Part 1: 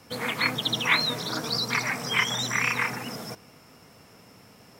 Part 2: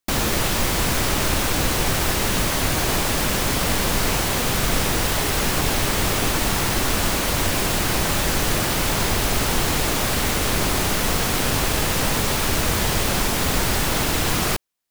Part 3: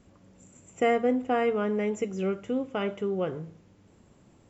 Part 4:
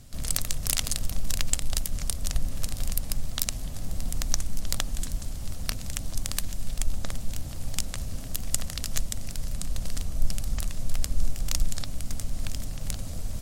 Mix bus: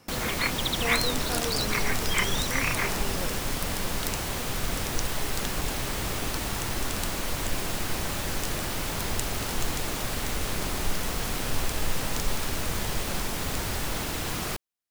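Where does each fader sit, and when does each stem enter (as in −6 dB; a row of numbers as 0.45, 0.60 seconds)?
−3.5, −10.0, −10.5, −7.0 decibels; 0.00, 0.00, 0.00, 0.65 seconds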